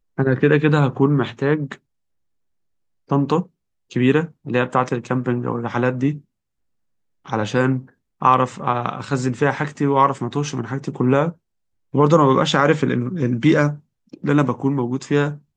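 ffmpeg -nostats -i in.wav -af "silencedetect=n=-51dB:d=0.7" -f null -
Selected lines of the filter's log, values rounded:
silence_start: 1.78
silence_end: 3.08 | silence_duration: 1.31
silence_start: 6.22
silence_end: 7.25 | silence_duration: 1.03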